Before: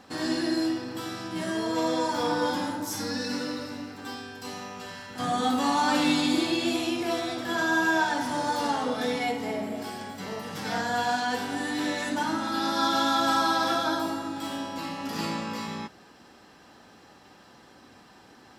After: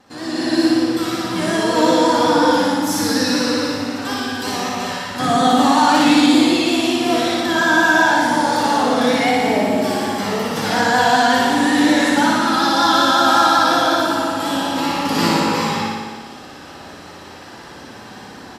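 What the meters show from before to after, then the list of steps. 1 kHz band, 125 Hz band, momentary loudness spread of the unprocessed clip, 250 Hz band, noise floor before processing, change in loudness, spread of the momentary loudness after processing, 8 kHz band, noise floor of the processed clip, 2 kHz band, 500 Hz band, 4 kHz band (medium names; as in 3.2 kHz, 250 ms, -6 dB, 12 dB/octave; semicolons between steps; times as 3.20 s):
+12.0 dB, +11.5 dB, 14 LU, +12.0 dB, -54 dBFS, +12.0 dB, 10 LU, +12.0 dB, -37 dBFS, +12.0 dB, +12.5 dB, +11.5 dB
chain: vibrato 5.4 Hz 70 cents; flutter echo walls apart 10 m, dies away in 1.4 s; level rider gain up to 14 dB; trim -1 dB; AAC 96 kbps 32 kHz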